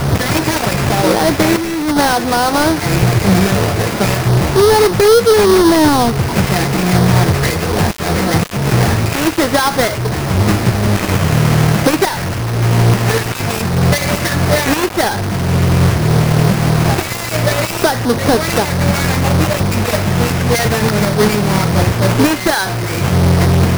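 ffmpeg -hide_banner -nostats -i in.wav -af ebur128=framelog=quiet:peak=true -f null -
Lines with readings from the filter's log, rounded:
Integrated loudness:
  I:         -13.3 LUFS
  Threshold: -23.3 LUFS
Loudness range:
  LRA:         3.3 LU
  Threshold: -33.3 LUFS
  LRA low:   -14.3 LUFS
  LRA high:  -11.0 LUFS
True peak:
  Peak:       -2.6 dBFS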